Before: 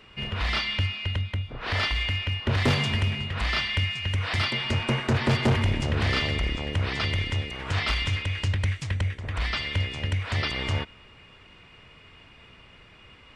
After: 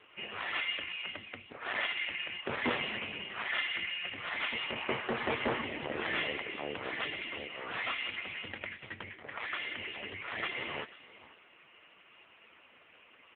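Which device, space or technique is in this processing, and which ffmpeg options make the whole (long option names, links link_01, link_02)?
satellite phone: -af "highpass=340,lowpass=3300,aecho=1:1:488:0.119" -ar 8000 -c:a libopencore_amrnb -b:a 5150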